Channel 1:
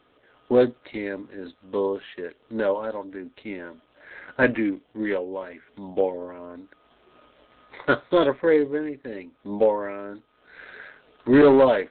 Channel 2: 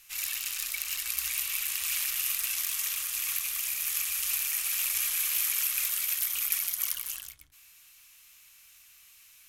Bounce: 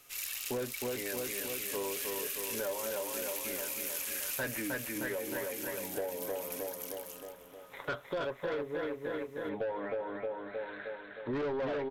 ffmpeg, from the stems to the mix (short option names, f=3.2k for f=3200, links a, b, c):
-filter_complex "[0:a]aecho=1:1:7.2:0.34,volume=-4.5dB,asplit=2[a][b];[b]volume=-5dB[c];[1:a]volume=-4dB,afade=t=out:st=4.33:d=0.63:silence=0.375837,asplit=2[d][e];[e]volume=-18.5dB[f];[c][f]amix=inputs=2:normalize=0,aecho=0:1:311|622|933|1244|1555|1866|2177|2488|2799:1|0.59|0.348|0.205|0.121|0.0715|0.0422|0.0249|0.0147[g];[a][d][g]amix=inputs=3:normalize=0,equalizer=f=280:w=1.5:g=-7.5,asoftclip=type=tanh:threshold=-22.5dB,acompressor=threshold=-33dB:ratio=6"